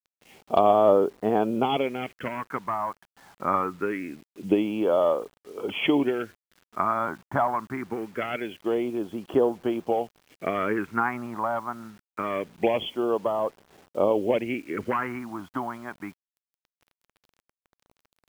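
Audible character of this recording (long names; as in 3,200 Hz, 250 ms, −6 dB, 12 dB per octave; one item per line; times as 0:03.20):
phaser sweep stages 4, 0.24 Hz, lowest notch 440–2,200 Hz
a quantiser's noise floor 10 bits, dither none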